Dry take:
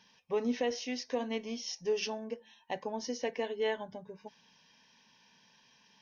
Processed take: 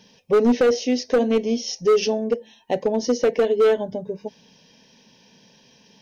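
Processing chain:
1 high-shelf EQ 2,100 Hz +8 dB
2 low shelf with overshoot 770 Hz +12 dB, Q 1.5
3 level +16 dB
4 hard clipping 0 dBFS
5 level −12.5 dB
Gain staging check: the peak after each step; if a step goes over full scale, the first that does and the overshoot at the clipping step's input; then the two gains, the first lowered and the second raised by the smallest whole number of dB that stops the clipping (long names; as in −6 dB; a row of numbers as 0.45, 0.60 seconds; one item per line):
−16.5, −7.5, +8.5, 0.0, −12.5 dBFS
step 3, 8.5 dB
step 3 +7 dB, step 5 −3.5 dB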